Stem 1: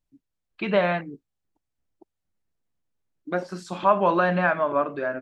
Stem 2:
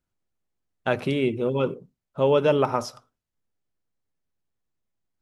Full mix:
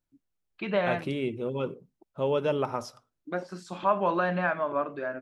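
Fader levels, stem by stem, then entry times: -5.5 dB, -7.0 dB; 0.00 s, 0.00 s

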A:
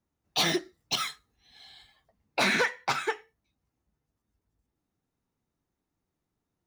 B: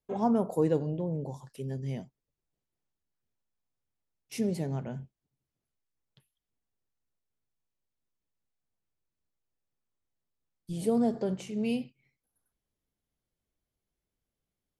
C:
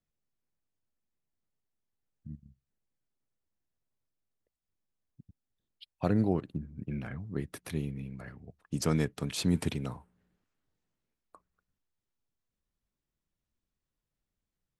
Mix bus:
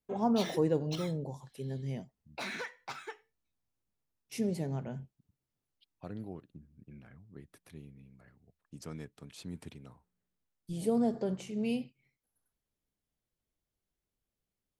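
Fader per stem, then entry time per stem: -14.5 dB, -2.5 dB, -15.5 dB; 0.00 s, 0.00 s, 0.00 s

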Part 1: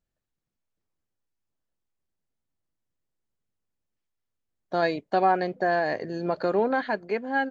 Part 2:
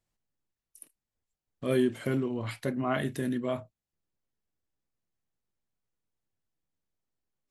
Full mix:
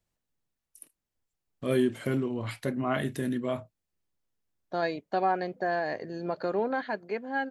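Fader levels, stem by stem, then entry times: -5.0 dB, +0.5 dB; 0.00 s, 0.00 s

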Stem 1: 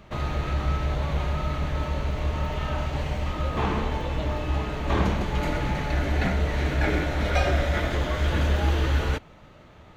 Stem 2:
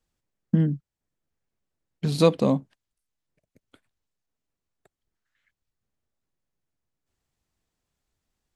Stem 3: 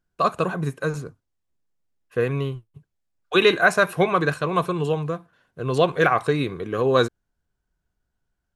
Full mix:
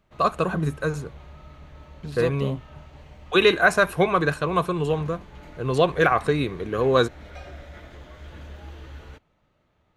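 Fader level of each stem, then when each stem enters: -18.0 dB, -10.5 dB, -0.5 dB; 0.00 s, 0.00 s, 0.00 s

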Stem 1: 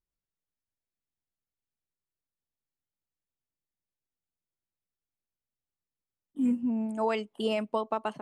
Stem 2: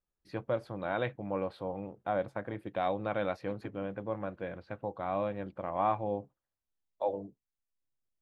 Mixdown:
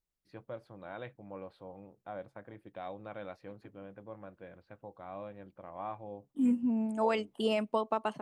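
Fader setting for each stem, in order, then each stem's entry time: -1.0 dB, -11.0 dB; 0.00 s, 0.00 s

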